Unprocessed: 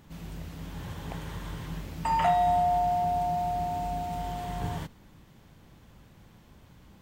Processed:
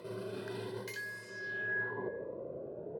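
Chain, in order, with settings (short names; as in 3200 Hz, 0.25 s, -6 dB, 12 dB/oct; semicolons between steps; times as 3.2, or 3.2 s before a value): Wiener smoothing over 15 samples; HPF 87 Hz 12 dB/oct; bell 1100 Hz -4 dB 0.47 oct; notch 920 Hz, Q 7.6; comb 4.6 ms, depth 62%; reverse; compressor 16:1, threshold -46 dBFS, peak gain reduction 25.5 dB; reverse; low-pass sweep 6000 Hz -> 250 Hz, 2.55–4.98; outdoor echo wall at 140 m, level -17 dB; speed mistake 33 rpm record played at 78 rpm; cascading phaser rising 0.84 Hz; gain +9.5 dB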